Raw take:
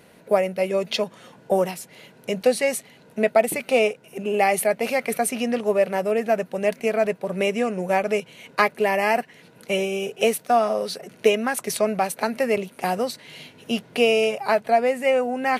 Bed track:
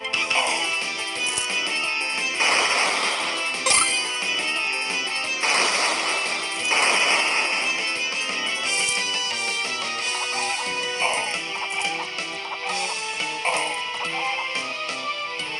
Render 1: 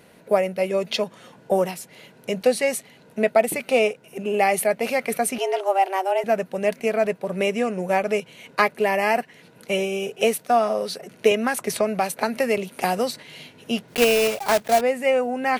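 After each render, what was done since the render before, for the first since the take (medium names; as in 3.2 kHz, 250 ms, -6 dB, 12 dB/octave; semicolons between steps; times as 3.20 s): 5.38–6.24 s: frequency shift +190 Hz; 11.31–13.23 s: three bands compressed up and down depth 70%; 13.88–14.83 s: block-companded coder 3-bit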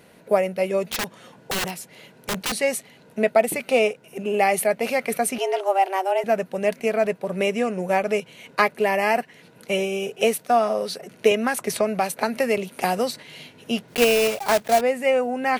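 0.89–2.52 s: integer overflow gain 19.5 dB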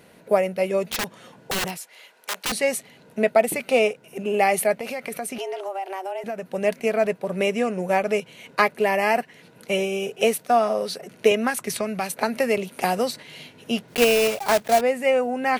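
1.77–2.45 s: high-pass 770 Hz; 4.74–6.46 s: compression 5:1, threshold -27 dBFS; 11.50–12.11 s: peaking EQ 610 Hz -6.5 dB 1.7 oct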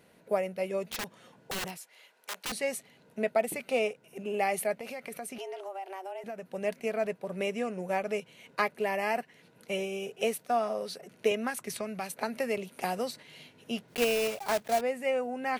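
trim -9.5 dB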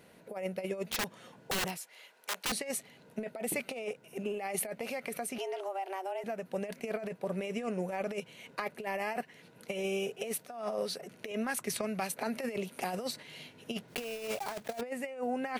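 peak limiter -21.5 dBFS, peak gain reduction 8 dB; compressor with a negative ratio -34 dBFS, ratio -0.5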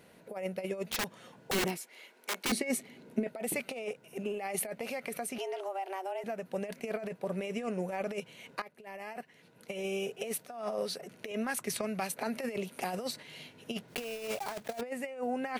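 1.53–3.27 s: small resonant body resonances 250/350/2200 Hz, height 11 dB; 8.62–10.20 s: fade in, from -15.5 dB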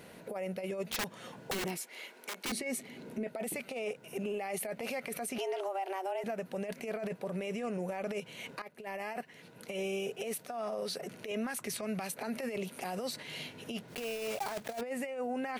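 in parallel at +1 dB: compression, threshold -44 dBFS, peak gain reduction 17.5 dB; on the sum: peak limiter -28 dBFS, peak gain reduction 11 dB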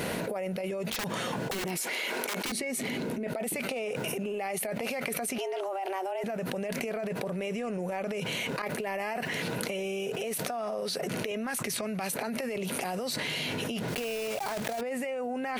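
level flattener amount 100%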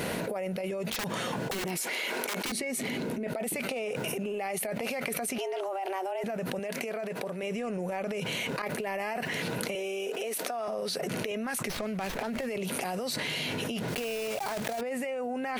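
6.59–7.43 s: high-pass 270 Hz 6 dB/octave; 9.75–10.68 s: high-pass 260 Hz 24 dB/octave; 11.68–12.47 s: sliding maximum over 5 samples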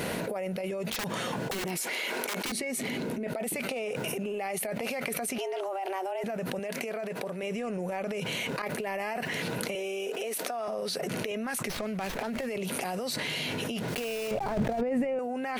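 14.31–15.19 s: tilt EQ -4 dB/octave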